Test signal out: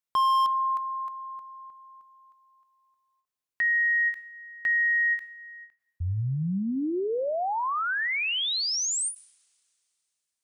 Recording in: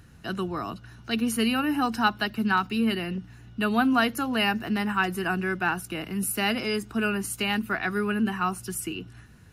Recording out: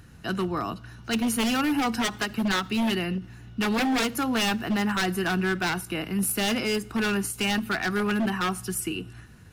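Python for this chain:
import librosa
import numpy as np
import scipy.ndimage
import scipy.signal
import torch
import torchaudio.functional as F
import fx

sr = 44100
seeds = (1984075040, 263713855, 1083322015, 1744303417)

y = 10.0 ** (-22.0 / 20.0) * (np.abs((x / 10.0 ** (-22.0 / 20.0) + 3.0) % 4.0 - 2.0) - 1.0)
y = fx.rev_double_slope(y, sr, seeds[0], early_s=0.65, late_s=3.1, knee_db=-22, drr_db=19.0)
y = fx.end_taper(y, sr, db_per_s=230.0)
y = y * librosa.db_to_amplitude(2.5)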